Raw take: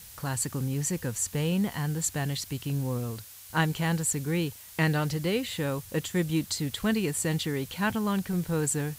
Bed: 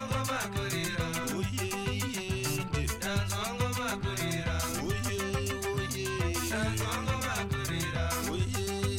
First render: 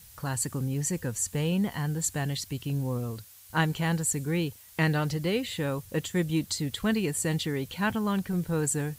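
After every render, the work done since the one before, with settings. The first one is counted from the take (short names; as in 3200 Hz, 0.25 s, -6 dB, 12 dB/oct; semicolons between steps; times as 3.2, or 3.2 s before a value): denoiser 6 dB, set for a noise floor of -48 dBFS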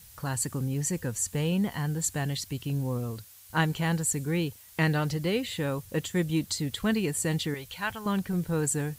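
7.54–8.06 bell 240 Hz -14.5 dB 2 oct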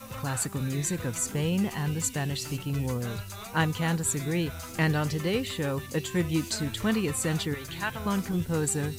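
add bed -8 dB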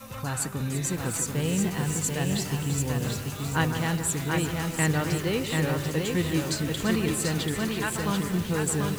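split-band echo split 2400 Hz, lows 0.15 s, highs 0.34 s, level -10 dB; lo-fi delay 0.737 s, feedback 35%, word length 7-bit, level -3 dB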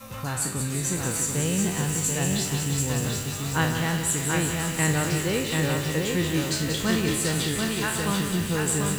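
spectral trails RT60 0.44 s; on a send: thin delay 0.184 s, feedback 76%, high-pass 2200 Hz, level -6 dB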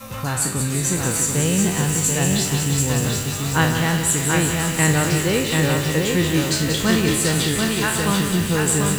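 gain +6 dB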